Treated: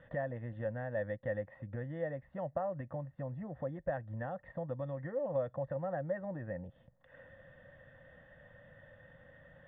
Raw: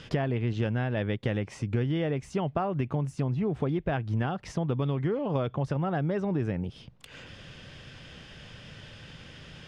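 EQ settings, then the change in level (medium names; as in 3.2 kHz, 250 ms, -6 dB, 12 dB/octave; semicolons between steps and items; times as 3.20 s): cascade formant filter e; bass shelf 350 Hz -4.5 dB; static phaser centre 1 kHz, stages 4; +11.5 dB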